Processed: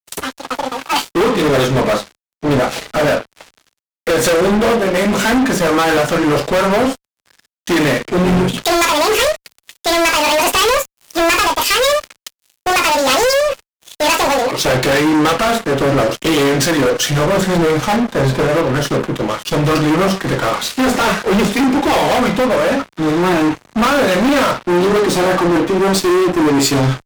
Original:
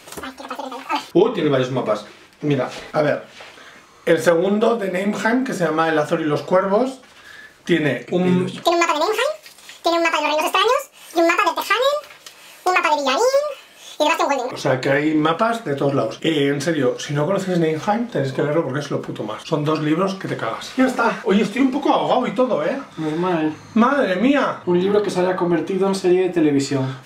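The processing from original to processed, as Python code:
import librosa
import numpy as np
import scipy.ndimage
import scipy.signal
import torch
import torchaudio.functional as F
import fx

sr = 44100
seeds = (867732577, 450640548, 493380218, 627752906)

y = fx.fuzz(x, sr, gain_db=27.0, gate_db=-35.0)
y = fx.band_widen(y, sr, depth_pct=70)
y = y * librosa.db_to_amplitude(2.0)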